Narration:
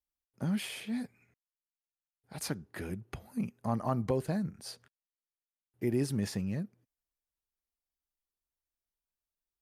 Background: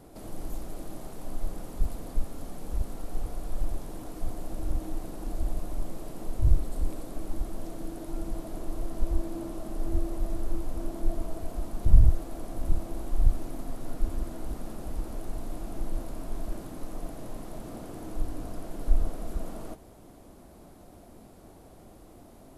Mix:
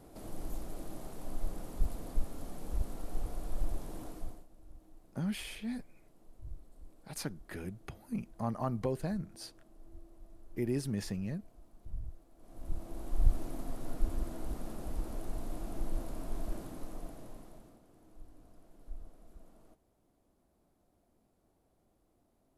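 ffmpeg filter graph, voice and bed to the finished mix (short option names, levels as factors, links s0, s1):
-filter_complex "[0:a]adelay=4750,volume=0.708[s0];[1:a]volume=7.08,afade=t=out:st=4.04:d=0.42:silence=0.0944061,afade=t=in:st=12.37:d=1:silence=0.0891251,afade=t=out:st=16.55:d=1.25:silence=0.11885[s1];[s0][s1]amix=inputs=2:normalize=0"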